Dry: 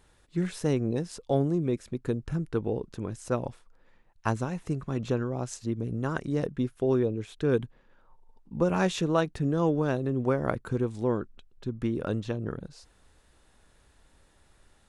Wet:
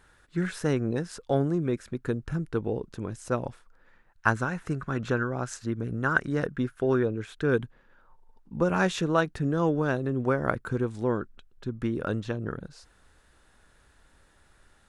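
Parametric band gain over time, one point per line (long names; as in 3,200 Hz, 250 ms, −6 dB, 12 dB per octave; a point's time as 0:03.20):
parametric band 1,500 Hz 0.69 octaves
0:01.88 +11 dB
0:02.53 +3.5 dB
0:03.24 +3.5 dB
0:04.43 +14.5 dB
0:07.12 +14.5 dB
0:07.63 +6.5 dB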